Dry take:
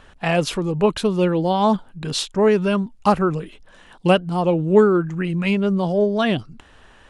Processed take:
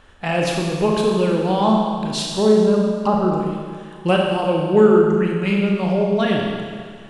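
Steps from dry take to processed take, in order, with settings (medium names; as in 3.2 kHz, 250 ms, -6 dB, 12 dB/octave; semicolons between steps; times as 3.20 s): 2.30–3.33 s: low-pass that closes with the level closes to 1 kHz, closed at -14.5 dBFS; Schroeder reverb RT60 1.9 s, combs from 29 ms, DRR -1 dB; trim -2.5 dB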